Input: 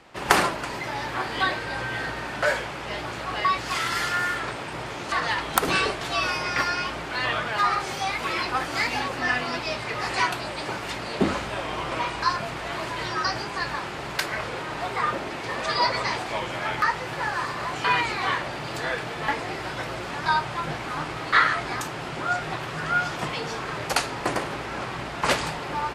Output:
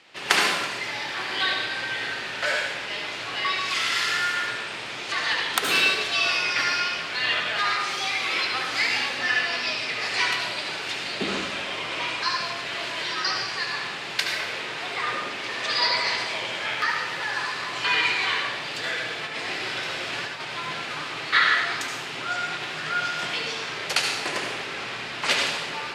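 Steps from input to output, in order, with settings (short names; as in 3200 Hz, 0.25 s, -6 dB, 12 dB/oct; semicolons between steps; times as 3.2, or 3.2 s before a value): weighting filter D; 19.25–20.45 negative-ratio compressor -26 dBFS, ratio -0.5; reverb RT60 1.0 s, pre-delay 62 ms, DRR 1 dB; gain -7 dB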